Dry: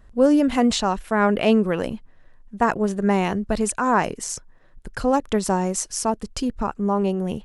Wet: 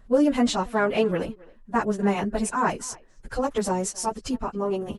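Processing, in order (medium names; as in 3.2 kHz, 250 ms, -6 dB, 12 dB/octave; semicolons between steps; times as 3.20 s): plain phase-vocoder stretch 0.67×; speakerphone echo 270 ms, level -22 dB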